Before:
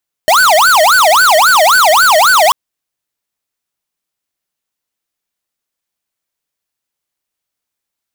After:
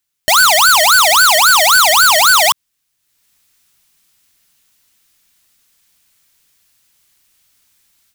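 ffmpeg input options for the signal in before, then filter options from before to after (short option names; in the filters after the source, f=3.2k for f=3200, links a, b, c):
-f lavfi -i "aevalsrc='0.422*(2*lt(mod((1065*t-455/(2*PI*3.7)*sin(2*PI*3.7*t)),1),0.5)-1)':d=2.24:s=44100"
-af "equalizer=f=560:t=o:w=2.3:g=-11,dynaudnorm=f=300:g=3:m=15.5dB,alimiter=level_in=6.5dB:limit=-1dB:release=50:level=0:latency=1"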